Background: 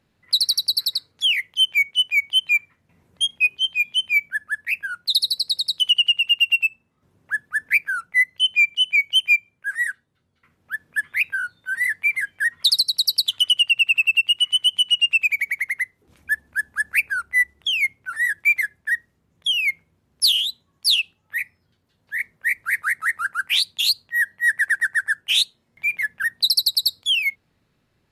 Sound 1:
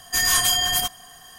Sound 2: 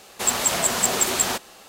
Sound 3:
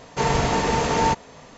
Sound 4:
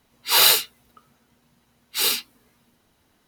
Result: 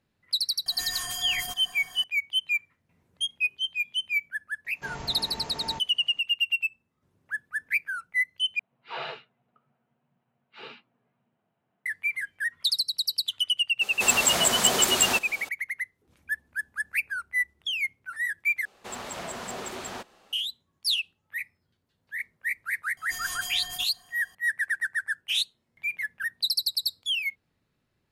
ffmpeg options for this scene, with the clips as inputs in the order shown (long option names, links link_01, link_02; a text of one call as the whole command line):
ffmpeg -i bed.wav -i cue0.wav -i cue1.wav -i cue2.wav -i cue3.wav -filter_complex "[1:a]asplit=2[link_01][link_02];[2:a]asplit=2[link_03][link_04];[0:a]volume=-8dB[link_05];[link_01]acompressor=threshold=-29dB:ratio=6:attack=3.2:release=140:knee=1:detection=peak[link_06];[3:a]bandreject=frequency=480:width=8.3[link_07];[4:a]highpass=frequency=110:width=0.5412,highpass=frequency=110:width=1.3066,equalizer=frequency=130:width_type=q:width=4:gain=7,equalizer=frequency=190:width_type=q:width=4:gain=5,equalizer=frequency=280:width_type=q:width=4:gain=-4,equalizer=frequency=690:width_type=q:width=4:gain=8,equalizer=frequency=2000:width_type=q:width=4:gain=-4,lowpass=frequency=2600:width=0.5412,lowpass=frequency=2600:width=1.3066[link_08];[link_03]acompressor=mode=upward:threshold=-29dB:ratio=1.5:attack=6.9:release=60:knee=2.83:detection=peak[link_09];[link_04]lowpass=frequency=2400:poles=1[link_10];[link_02]acompressor=mode=upward:threshold=-34dB:ratio=2.5:attack=3.2:release=140:knee=2.83:detection=peak[link_11];[link_05]asplit=3[link_12][link_13][link_14];[link_12]atrim=end=8.594[link_15];[link_08]atrim=end=3.27,asetpts=PTS-STARTPTS,volume=-13dB[link_16];[link_13]atrim=start=11.856:end=18.654[link_17];[link_10]atrim=end=1.68,asetpts=PTS-STARTPTS,volume=-10dB[link_18];[link_14]atrim=start=20.326[link_19];[link_06]atrim=end=1.38,asetpts=PTS-STARTPTS,volume=-1.5dB,afade=type=in:duration=0.004:curve=hsin,afade=type=out:start_time=1.376:duration=0.004:curve=hsin,adelay=660[link_20];[link_07]atrim=end=1.57,asetpts=PTS-STARTPTS,volume=-17.5dB,afade=type=in:duration=0.004:curve=hsin,afade=type=out:start_time=1.566:duration=0.004:curve=hsin,adelay=205065S[link_21];[link_09]atrim=end=1.68,asetpts=PTS-STARTPTS,volume=-1.5dB,afade=type=in:duration=0.004:curve=hsin,afade=type=out:start_time=1.676:duration=0.004:curve=hsin,adelay=13810[link_22];[link_11]atrim=end=1.38,asetpts=PTS-STARTPTS,volume=-16dB,afade=type=in:duration=0.004:curve=hsin,afade=type=out:start_time=1.376:duration=0.004:curve=hsin,adelay=22970[link_23];[link_15][link_16]acrossfade=duration=0.004:curve1=hsin:curve2=hsin[link_24];[link_24][link_17]acrossfade=duration=0.004:curve1=hsin:curve2=hsin[link_25];[link_25][link_18]acrossfade=duration=0.004:curve1=hsin:curve2=hsin[link_26];[link_26][link_19]acrossfade=duration=0.004:curve1=hsin:curve2=hsin[link_27];[link_27][link_20][link_21][link_22][link_23]amix=inputs=5:normalize=0" out.wav